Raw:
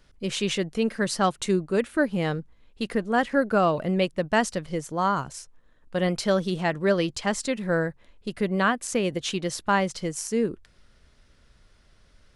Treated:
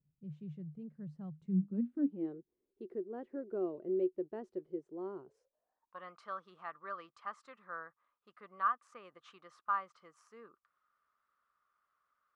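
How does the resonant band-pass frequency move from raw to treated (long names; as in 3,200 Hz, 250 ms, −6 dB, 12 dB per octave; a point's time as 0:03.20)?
resonant band-pass, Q 13
0:01.33 150 Hz
0:02.37 370 Hz
0:05.22 370 Hz
0:06.02 1,200 Hz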